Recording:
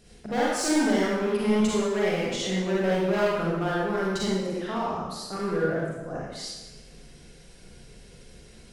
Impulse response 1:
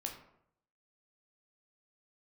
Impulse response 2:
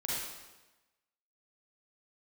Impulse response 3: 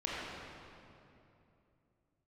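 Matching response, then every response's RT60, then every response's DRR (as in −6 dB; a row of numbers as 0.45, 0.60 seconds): 2; 0.70, 1.1, 2.8 seconds; 1.5, −6.5, −7.0 decibels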